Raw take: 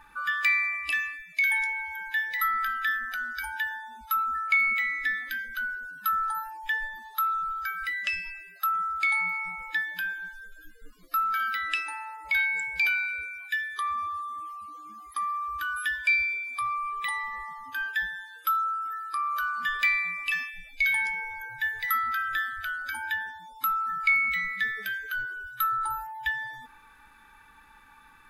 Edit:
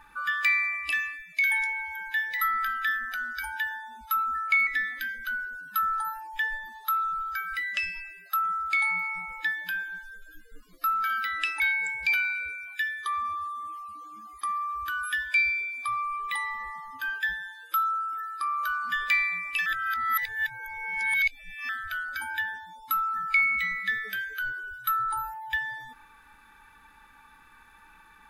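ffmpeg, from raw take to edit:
-filter_complex "[0:a]asplit=5[a][b][c][d][e];[a]atrim=end=4.672[f];[b]atrim=start=4.968:end=11.902[g];[c]atrim=start=12.328:end=20.392[h];[d]atrim=start=20.388:end=22.422,asetpts=PTS-STARTPTS,areverse[i];[e]atrim=start=22.418[j];[f][g]acrossfade=d=0.004:c1=hsin:c2=hsin[k];[k][h]acrossfade=d=0.004:c1=hsin:c2=hsin[l];[l][i]acrossfade=d=0.004:c1=hsin:c2=hsin[m];[m][j]acrossfade=d=0.004:c1=hsin:c2=hsin"

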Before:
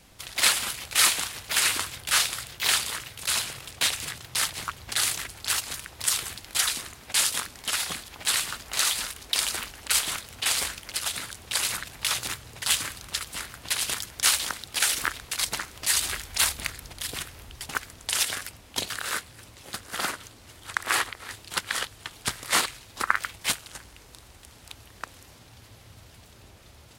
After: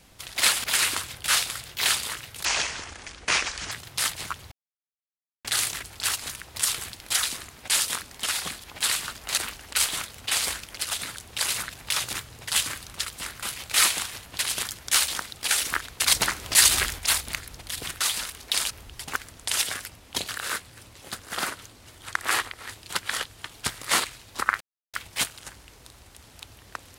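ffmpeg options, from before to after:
-filter_complex "[0:a]asplit=13[a][b][c][d][e][f][g][h][i][j][k][l][m];[a]atrim=end=0.642[n];[b]atrim=start=1.468:end=3.284[o];[c]atrim=start=3.28:end=4.09,asetpts=PTS-STARTPTS,asetrate=28224,aresample=44100,atrim=end_sample=55814,asetpts=PTS-STARTPTS[p];[d]atrim=start=4.086:end=4.89,asetpts=PTS-STARTPTS,afade=t=out:st=0.8:d=0.004:c=hsin,apad=pad_dur=0.93[q];[e]atrim=start=4.89:end=8.822,asetpts=PTS-STARTPTS,afade=t=in:d=0.004:c=hsin[r];[f]atrim=start=9.518:end=13.572[s];[g]atrim=start=0.638:end=1.472[t];[h]atrim=start=13.568:end=15.322[u];[i]atrim=start=15.318:end=16.302,asetpts=PTS-STARTPTS,volume=7dB[v];[j]atrim=start=16.298:end=17.322[w];[k]atrim=start=8.818:end=9.522[x];[l]atrim=start=17.318:end=23.22,asetpts=PTS-STARTPTS,afade=t=out:st=5.898:d=0.004:c=hsin,apad=pad_dur=0.33[y];[m]atrim=start=23.22,asetpts=PTS-STARTPTS,afade=t=in:d=0.004:c=hsin[z];[n][o]acrossfade=d=0.004:c1=hsin:c2=hsin[aa];[aa][p]acrossfade=d=0.004:c1=hsin:c2=hsin[ab];[q][r]concat=n=2:v=0:a=1[ac];[ab][ac]acrossfade=d=0.004:c1=hsin:c2=hsin[ad];[ad][s]acrossfade=d=0.004:c1=hsin:c2=hsin[ae];[ae][t]acrossfade=d=0.004:c1=hsin:c2=hsin[af];[af][u]acrossfade=d=0.004:c1=hsin:c2=hsin[ag];[ag][v]acrossfade=d=0.004:c1=hsin:c2=hsin[ah];[ah][w]acrossfade=d=0.004:c1=hsin:c2=hsin[ai];[ai][x]acrossfade=d=0.004:c1=hsin:c2=hsin[aj];[y][z]concat=n=2:v=0:a=1[ak];[aj][ak]acrossfade=d=0.004:c1=hsin:c2=hsin"

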